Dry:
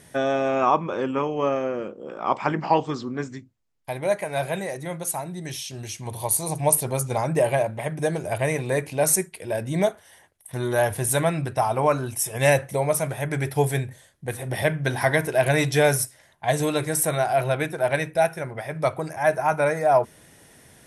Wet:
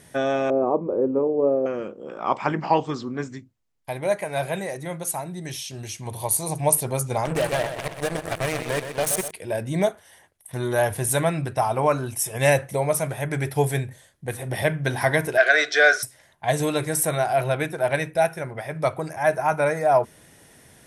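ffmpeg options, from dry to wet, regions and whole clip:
ffmpeg -i in.wav -filter_complex "[0:a]asettb=1/sr,asplit=3[link_01][link_02][link_03];[link_01]atrim=end=0.504[link_04];[link_02]atrim=start=0.5:end=1.66,asetpts=PTS-STARTPTS,afade=type=in:duration=0.004:curve=qsin,afade=type=out:start_time=1.156:duration=0.004:curve=qsin,lowpass=frequency=480:width_type=q:width=2,equalizer=frequency=150:width_type=o:width=0.27:gain=-8[link_05];[link_03]atrim=start=1.656[link_06];[link_04][link_05]acrossfade=duration=0.004:curve1=hsin:curve2=qsin[link_07];[link_07][link_06]acrossfade=duration=0.004:curve1=qsin:curve2=hsin,asettb=1/sr,asplit=3[link_08][link_09][link_10];[link_08]atrim=end=7.254[link_11];[link_09]atrim=start=7.25:end=9.31,asetpts=PTS-STARTPTS,afade=type=in:duration=0.004:curve=qsin,afade=type=out:start_time=2.056:duration=0.004:curve=qsin,acompressor=threshold=-23dB:ratio=2:attack=3.2:release=140:knee=1:detection=peak,acrusher=bits=3:mix=0:aa=0.5,aecho=1:1:125|250|375|500|625|750|875:0.355|0.199|0.111|0.0623|0.0349|0.0195|0.0109,atrim=end_sample=90846[link_12];[link_10]atrim=start=9.306[link_13];[link_11][link_12]acrossfade=duration=0.004:curve1=hsin:curve2=qsin[link_14];[link_14][link_13]acrossfade=duration=0.004:curve1=qsin:curve2=hsin,asettb=1/sr,asplit=3[link_15][link_16][link_17];[link_15]atrim=end=15.374[link_18];[link_16]atrim=start=15.37:end=16.03,asetpts=PTS-STARTPTS,afade=type=in:duration=0.004:curve=qsin,afade=type=out:start_time=0.656:duration=0.004:curve=qsin,acontrast=50,asuperstop=centerf=890:order=12:qfactor=2.9,highpass=frequency=480:width=0.5412,highpass=frequency=480:width=1.3066,equalizer=frequency=540:width_type=q:width=4:gain=-8,equalizer=frequency=1000:width_type=q:width=4:gain=-9,equalizer=frequency=1500:width_type=q:width=4:gain=10,equalizer=frequency=2700:width_type=q:width=4:gain=-8,lowpass=frequency=5500:width=0.5412,lowpass=frequency=5500:width=1.3066[link_19];[link_17]atrim=start=16.026[link_20];[link_18][link_19]acrossfade=duration=0.004:curve1=hsin:curve2=qsin[link_21];[link_21][link_20]acrossfade=duration=0.004:curve1=qsin:curve2=hsin" out.wav

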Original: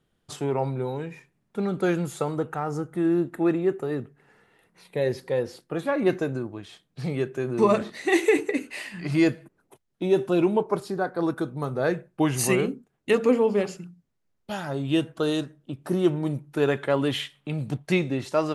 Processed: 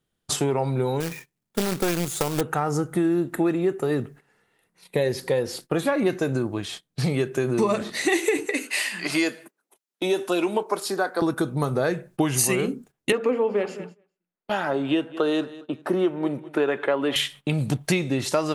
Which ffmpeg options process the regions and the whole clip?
ffmpeg -i in.wav -filter_complex "[0:a]asettb=1/sr,asplit=3[link_01][link_02][link_03];[link_01]atrim=end=1.004[link_04];[link_02]atrim=start=1:end=2.41,asetpts=PTS-STARTPTS,afade=type=in:duration=0.004:curve=qsin,afade=type=out:start_time=1.406:duration=0.004:curve=qsin,acrusher=bits=2:mode=log:mix=0:aa=0.000001,aeval=exprs='(tanh(8.91*val(0)+0.7)-tanh(0.7))/8.91':channel_layout=same[link_05];[link_03]atrim=start=2.406[link_06];[link_04][link_05]acrossfade=duration=0.004:curve1=hsin:curve2=qsin[link_07];[link_07][link_06]acrossfade=duration=0.004:curve1=qsin:curve2=hsin,asettb=1/sr,asplit=3[link_08][link_09][link_10];[link_08]atrim=end=8.464[link_11];[link_09]atrim=start=8.46:end=11.22,asetpts=PTS-STARTPTS,afade=type=in:duration=0.004:curve=qsin,afade=type=out:start_time=2.756:duration=0.004:curve=qsin,highpass=frequency=200:width=0.5412,highpass=frequency=200:width=1.3066,lowshelf=frequency=400:gain=-11[link_12];[link_10]atrim=start=11.216[link_13];[link_11][link_12]acrossfade=duration=0.004:curve1=hsin:curve2=qsin[link_14];[link_14][link_13]acrossfade=duration=0.004:curve1=qsin:curve2=hsin,asettb=1/sr,asplit=3[link_15][link_16][link_17];[link_15]atrim=end=13.124[link_18];[link_16]atrim=start=13.12:end=17.16,asetpts=PTS-STARTPTS,afade=type=in:duration=0.004:curve=qsin,afade=type=out:start_time=4.036:duration=0.004:curve=qsin,acrossover=split=230 2900:gain=0.0891 1 0.112[link_19][link_20][link_21];[link_19][link_20][link_21]amix=inputs=3:normalize=0,aecho=1:1:204|408:0.0794|0.0246,atrim=end_sample=178164[link_22];[link_17]atrim=start=17.156[link_23];[link_18][link_22]acrossfade=duration=0.004:curve1=hsin:curve2=qsin[link_24];[link_24][link_23]acrossfade=duration=0.004:curve1=qsin:curve2=hsin,agate=range=-16dB:threshold=-50dB:ratio=16:detection=peak,highshelf=frequency=3900:gain=8.5,acompressor=threshold=-29dB:ratio=5,volume=9dB" out.wav

